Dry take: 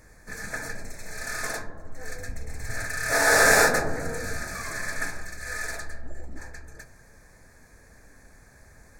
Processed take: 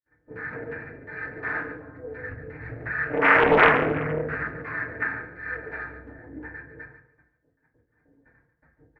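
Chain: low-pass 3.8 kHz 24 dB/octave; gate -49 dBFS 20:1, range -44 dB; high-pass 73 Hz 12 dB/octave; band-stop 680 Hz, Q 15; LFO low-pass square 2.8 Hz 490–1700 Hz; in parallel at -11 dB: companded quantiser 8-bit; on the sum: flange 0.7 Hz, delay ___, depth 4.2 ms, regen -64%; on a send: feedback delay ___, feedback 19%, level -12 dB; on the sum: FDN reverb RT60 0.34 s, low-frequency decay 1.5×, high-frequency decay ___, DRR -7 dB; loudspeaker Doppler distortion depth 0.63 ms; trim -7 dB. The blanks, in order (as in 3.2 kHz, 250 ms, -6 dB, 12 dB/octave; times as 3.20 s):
4.9 ms, 143 ms, 0.75×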